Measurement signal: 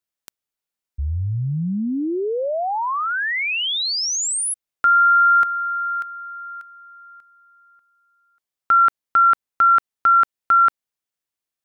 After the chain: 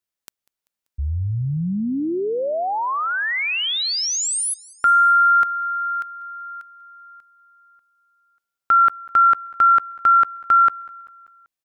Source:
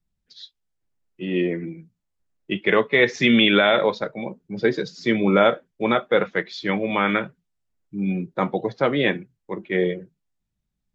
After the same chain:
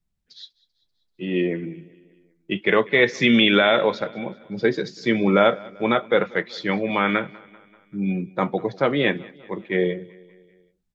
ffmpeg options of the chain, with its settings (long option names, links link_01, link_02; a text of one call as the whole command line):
ffmpeg -i in.wav -af "aecho=1:1:194|388|582|776:0.0708|0.0396|0.0222|0.0124" out.wav